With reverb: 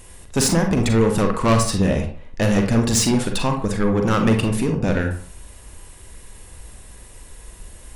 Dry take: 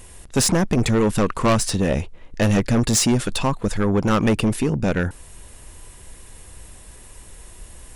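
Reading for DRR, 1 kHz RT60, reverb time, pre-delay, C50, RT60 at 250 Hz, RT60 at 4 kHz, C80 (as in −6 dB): 3.5 dB, 0.45 s, 0.45 s, 35 ms, 7.0 dB, 0.40 s, 0.25 s, 11.0 dB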